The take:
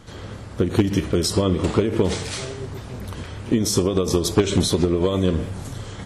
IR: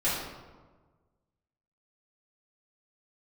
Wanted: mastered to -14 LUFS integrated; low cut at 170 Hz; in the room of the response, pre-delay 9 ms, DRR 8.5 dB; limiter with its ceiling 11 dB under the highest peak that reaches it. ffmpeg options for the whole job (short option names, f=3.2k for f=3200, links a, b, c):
-filter_complex "[0:a]highpass=170,alimiter=limit=-15dB:level=0:latency=1,asplit=2[a][b];[1:a]atrim=start_sample=2205,adelay=9[c];[b][c]afir=irnorm=-1:irlink=0,volume=-19dB[d];[a][d]amix=inputs=2:normalize=0,volume=11.5dB"